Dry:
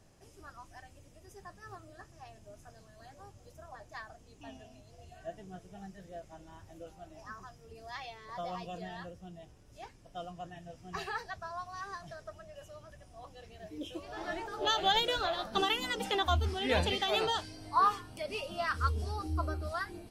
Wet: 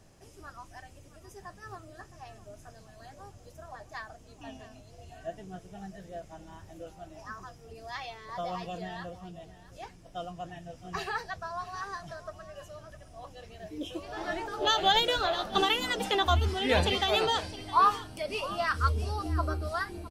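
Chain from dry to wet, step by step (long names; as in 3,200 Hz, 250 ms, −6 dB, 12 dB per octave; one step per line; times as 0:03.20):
single-tap delay 664 ms −17 dB
level +4 dB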